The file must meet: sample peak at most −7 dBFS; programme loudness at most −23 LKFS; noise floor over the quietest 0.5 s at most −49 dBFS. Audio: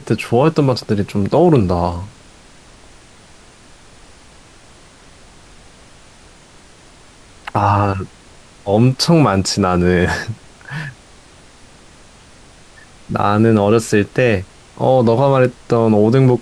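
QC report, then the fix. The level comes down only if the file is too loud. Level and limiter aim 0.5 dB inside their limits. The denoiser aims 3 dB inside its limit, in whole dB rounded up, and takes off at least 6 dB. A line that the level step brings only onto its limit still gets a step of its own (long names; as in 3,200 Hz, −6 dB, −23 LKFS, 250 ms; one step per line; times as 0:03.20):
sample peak −1.5 dBFS: out of spec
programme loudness −15.0 LKFS: out of spec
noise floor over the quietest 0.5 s −44 dBFS: out of spec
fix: level −8.5 dB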